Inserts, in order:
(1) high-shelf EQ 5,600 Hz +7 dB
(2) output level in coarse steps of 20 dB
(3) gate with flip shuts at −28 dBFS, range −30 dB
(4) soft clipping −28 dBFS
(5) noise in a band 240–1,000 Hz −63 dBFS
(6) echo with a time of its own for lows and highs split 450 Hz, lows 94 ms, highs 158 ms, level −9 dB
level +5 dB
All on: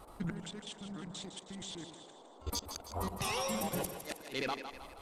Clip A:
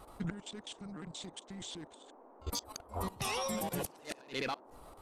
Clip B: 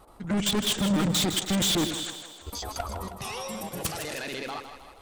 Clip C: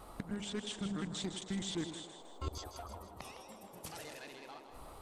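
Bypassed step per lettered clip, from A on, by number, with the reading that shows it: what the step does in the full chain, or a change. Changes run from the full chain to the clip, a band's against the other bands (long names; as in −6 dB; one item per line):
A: 6, echo-to-direct ratio −7.5 dB to none audible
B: 3, change in crest factor −4.5 dB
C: 2, 250 Hz band +5.5 dB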